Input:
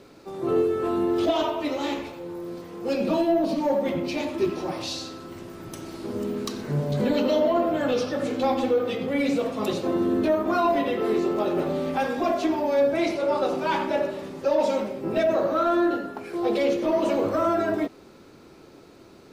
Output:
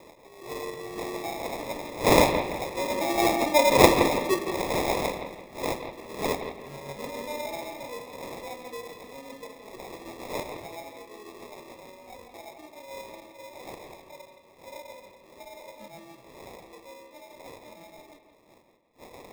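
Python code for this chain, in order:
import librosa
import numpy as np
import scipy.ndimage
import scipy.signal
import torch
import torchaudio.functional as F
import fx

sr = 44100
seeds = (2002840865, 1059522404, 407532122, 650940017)

p1 = fx.dmg_wind(x, sr, seeds[0], corner_hz=600.0, level_db=-22.0)
p2 = fx.doppler_pass(p1, sr, speed_mps=11, closest_m=5.7, pass_at_s=3.89)
p3 = fx.peak_eq(p2, sr, hz=570.0, db=9.0, octaves=1.6)
p4 = fx.rotary(p3, sr, hz=7.5)
p5 = fx.low_shelf(p4, sr, hz=410.0, db=-9.5)
p6 = fx.sample_hold(p5, sr, seeds[1], rate_hz=1500.0, jitter_pct=0)
p7 = p6 + fx.echo_bbd(p6, sr, ms=168, stages=4096, feedback_pct=36, wet_db=-8.5, dry=0)
y = F.gain(torch.from_numpy(p7), 1.0).numpy()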